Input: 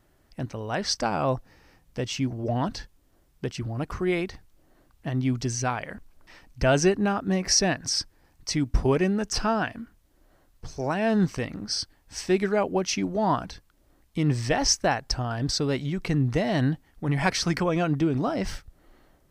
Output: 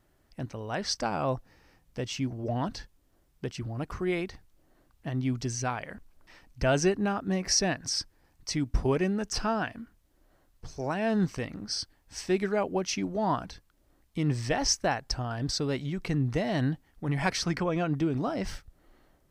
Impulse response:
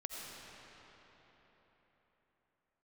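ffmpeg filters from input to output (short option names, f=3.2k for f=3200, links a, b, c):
-filter_complex "[0:a]asettb=1/sr,asplit=3[a][b][c];[a]atrim=end=17.444[d];[b]atrim=start=17.44:end=17.92,asetpts=PTS-STARTPTS,afade=t=in:d=0.004:c=qsin,afade=t=out:st=0.476:d=0.004:c=qsin,highshelf=f=6.4k:g=-8.5[e];[c]atrim=start=17.916[f];[d][e]acrossfade=d=0.004:c1=hsin:c2=qsin[g];[g][f]acrossfade=d=0.004:c1=qsin:c2=hsin,volume=-4dB"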